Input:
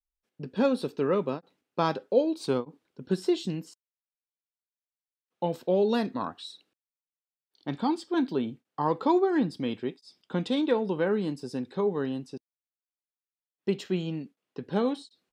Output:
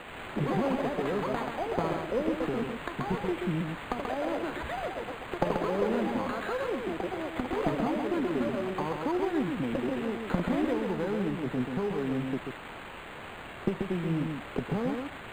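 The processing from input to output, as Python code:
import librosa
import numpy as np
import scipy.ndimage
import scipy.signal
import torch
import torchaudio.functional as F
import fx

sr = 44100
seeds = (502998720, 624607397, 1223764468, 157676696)

p1 = fx.recorder_agc(x, sr, target_db=-16.0, rise_db_per_s=37.0, max_gain_db=30)
p2 = scipy.signal.sosfilt(scipy.signal.butter(4, 100.0, 'highpass', fs=sr, output='sos'), p1)
p3 = fx.low_shelf(p2, sr, hz=150.0, db=8.5)
p4 = fx.tube_stage(p3, sr, drive_db=10.0, bias=0.5)
p5 = fx.quant_dither(p4, sr, seeds[0], bits=6, dither='triangular')
p6 = fx.echo_pitch(p5, sr, ms=82, semitones=6, count=2, db_per_echo=-3.0)
p7 = p6 + fx.echo_single(p6, sr, ms=134, db=-5.0, dry=0)
p8 = np.interp(np.arange(len(p7)), np.arange(len(p7))[::8], p7[::8])
y = p8 * 10.0 ** (-6.5 / 20.0)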